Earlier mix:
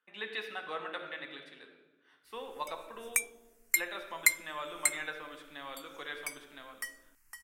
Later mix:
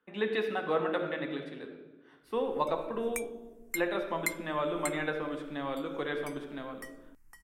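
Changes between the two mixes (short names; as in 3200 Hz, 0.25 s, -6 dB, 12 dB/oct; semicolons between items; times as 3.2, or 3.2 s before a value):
speech +9.0 dB; master: add tilt shelf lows +10 dB, about 770 Hz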